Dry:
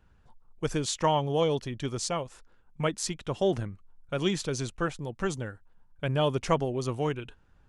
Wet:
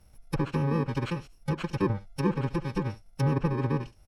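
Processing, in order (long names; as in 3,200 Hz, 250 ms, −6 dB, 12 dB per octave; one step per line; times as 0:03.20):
samples in bit-reversed order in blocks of 64 samples
high-shelf EQ 9,500 Hz −5 dB
on a send: single-tap delay 131 ms −19 dB
on the sum: treble cut that deepens with the level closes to 1,200 Hz, closed at −27.5 dBFS
phase-vocoder stretch with locked phases 0.53×
level +6.5 dB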